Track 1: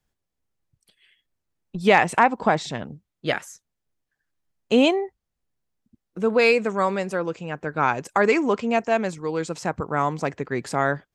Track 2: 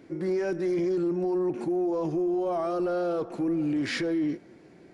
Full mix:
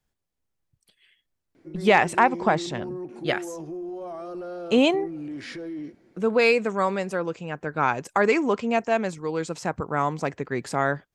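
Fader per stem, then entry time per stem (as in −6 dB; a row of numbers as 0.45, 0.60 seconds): −1.5, −7.5 decibels; 0.00, 1.55 seconds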